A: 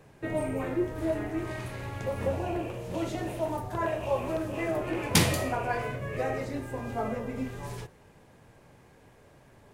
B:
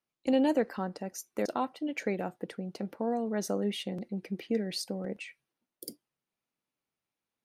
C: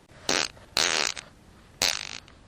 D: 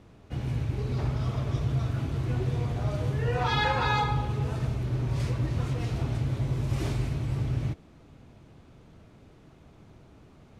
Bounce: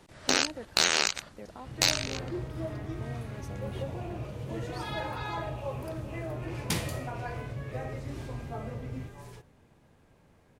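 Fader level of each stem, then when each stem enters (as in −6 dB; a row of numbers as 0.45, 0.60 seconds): −8.5, −14.5, −0.5, −11.0 decibels; 1.55, 0.00, 0.00, 1.35 seconds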